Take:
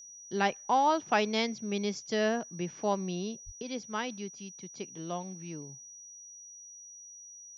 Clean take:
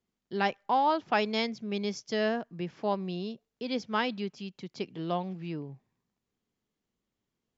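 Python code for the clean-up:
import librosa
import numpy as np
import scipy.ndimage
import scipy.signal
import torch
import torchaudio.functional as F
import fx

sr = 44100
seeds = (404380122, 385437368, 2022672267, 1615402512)

y = fx.notch(x, sr, hz=5800.0, q=30.0)
y = fx.fix_deplosive(y, sr, at_s=(3.45,))
y = fx.gain(y, sr, db=fx.steps((0.0, 0.0), (3.62, 5.5)))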